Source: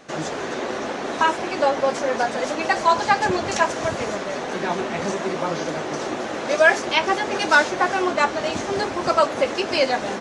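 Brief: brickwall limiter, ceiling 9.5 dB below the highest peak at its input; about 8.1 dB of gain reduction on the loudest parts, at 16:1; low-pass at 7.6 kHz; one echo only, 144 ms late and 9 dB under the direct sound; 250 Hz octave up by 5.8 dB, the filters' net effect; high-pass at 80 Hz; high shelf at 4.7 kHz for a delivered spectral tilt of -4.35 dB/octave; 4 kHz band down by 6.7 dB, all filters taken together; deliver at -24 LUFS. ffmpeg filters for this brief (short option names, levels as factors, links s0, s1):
-af "highpass=80,lowpass=7600,equalizer=f=250:t=o:g=8,equalizer=f=4000:t=o:g=-7.5,highshelf=f=4700:g=-3,acompressor=threshold=0.126:ratio=16,alimiter=limit=0.133:level=0:latency=1,aecho=1:1:144:0.355,volume=1.26"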